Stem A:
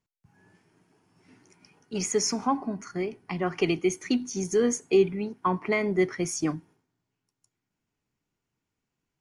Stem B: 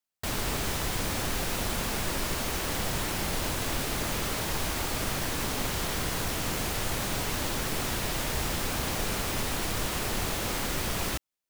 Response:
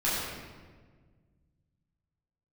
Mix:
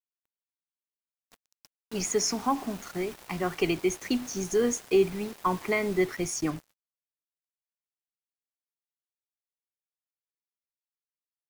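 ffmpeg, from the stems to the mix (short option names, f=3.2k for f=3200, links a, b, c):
-filter_complex "[0:a]asubboost=boost=4:cutoff=78,volume=-0.5dB,asplit=2[a][b];[1:a]lowshelf=f=90:g=-7,aeval=exprs='val(0)*sin(2*PI*700*n/s)':c=same,volume=-15dB,afade=t=out:st=5.94:d=0.38:silence=0.473151[c];[b]apad=whole_len=506909[d];[c][d]sidechaingate=range=-33dB:threshold=-55dB:ratio=16:detection=peak[e];[a][e]amix=inputs=2:normalize=0,acrusher=bits=6:mix=0:aa=0.5"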